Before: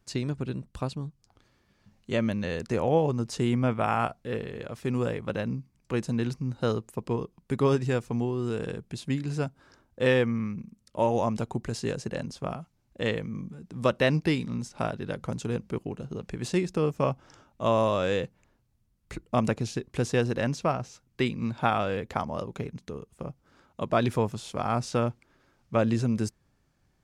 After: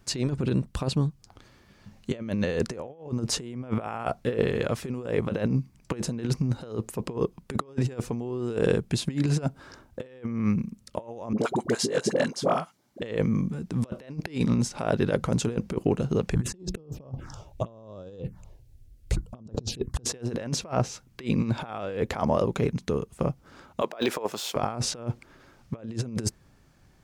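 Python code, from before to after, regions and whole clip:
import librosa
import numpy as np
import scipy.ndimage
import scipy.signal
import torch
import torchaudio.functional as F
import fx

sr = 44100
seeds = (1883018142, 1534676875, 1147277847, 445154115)

y = fx.chain(x, sr, fx.highpass(hz=250.0, slope=12),
    fx.notch(hz=2600.0, q=10.0),
    fx.dispersion(late='highs', ms=54.0, hz=710.0), at=(11.33, 13.02))
y = fx.chain(y, sr, fx.low_shelf(hz=220.0, db=12.0),
    fx.env_phaser(low_hz=170.0, high_hz=2200.0, full_db=-18.0), at=(16.34, 20.05))
y = fx.chain(y, sr, fx.highpass(hz=480.0, slope=12),
    fx.resample_linear(factor=2), at=(23.81, 24.56))
y = fx.dynamic_eq(y, sr, hz=450.0, q=0.99, threshold_db=-36.0, ratio=4.0, max_db=5)
y = fx.over_compress(y, sr, threshold_db=-31.0, ratio=-0.5)
y = y * 10.0 ** (3.5 / 20.0)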